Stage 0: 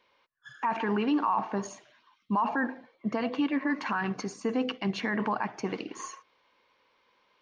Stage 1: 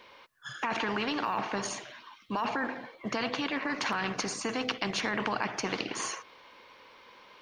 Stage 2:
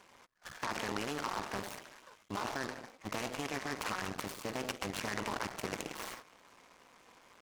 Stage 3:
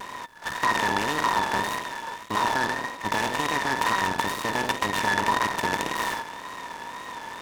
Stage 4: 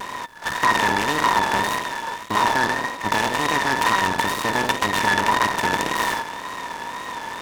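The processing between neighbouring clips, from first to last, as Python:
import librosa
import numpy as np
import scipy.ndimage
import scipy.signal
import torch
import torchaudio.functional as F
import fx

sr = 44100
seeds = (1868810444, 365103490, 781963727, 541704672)

y1 = fx.spectral_comp(x, sr, ratio=2.0)
y1 = F.gain(torch.from_numpy(y1), 2.0).numpy()
y2 = fx.cycle_switch(y1, sr, every=2, mode='muted')
y2 = fx.high_shelf(y2, sr, hz=6400.0, db=-9.5)
y2 = fx.noise_mod_delay(y2, sr, seeds[0], noise_hz=3200.0, depth_ms=0.045)
y2 = F.gain(torch.from_numpy(y2), -3.0).numpy()
y3 = fx.bin_compress(y2, sr, power=0.6)
y3 = fx.small_body(y3, sr, hz=(960.0, 1800.0, 3600.0), ring_ms=60, db=16)
y3 = fx.wow_flutter(y3, sr, seeds[1], rate_hz=2.1, depth_cents=75.0)
y3 = F.gain(torch.from_numpy(y3), 6.0).numpy()
y4 = fx.transformer_sat(y3, sr, knee_hz=1300.0)
y4 = F.gain(torch.from_numpy(y4), 6.0).numpy()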